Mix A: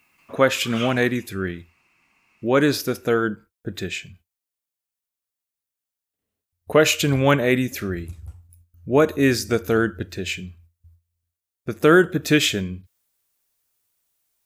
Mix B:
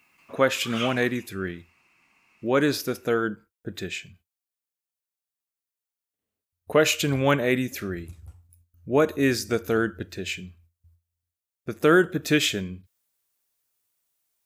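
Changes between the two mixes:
speech −3.5 dB
master: add low-shelf EQ 89 Hz −6 dB

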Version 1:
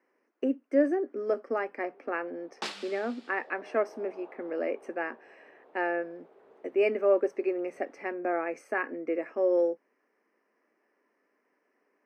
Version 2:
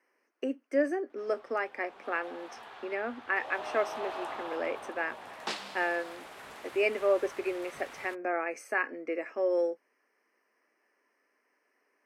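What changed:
speech: add spectral tilt +3 dB per octave
first sound: remove resonant band-pass 410 Hz, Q 3.2
second sound: entry +2.85 s

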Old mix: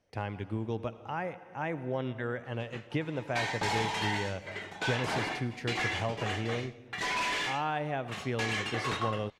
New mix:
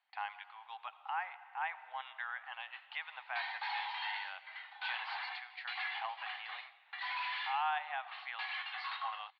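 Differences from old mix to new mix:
background −6.5 dB
master: add Chebyshev band-pass filter 770–4,400 Hz, order 5

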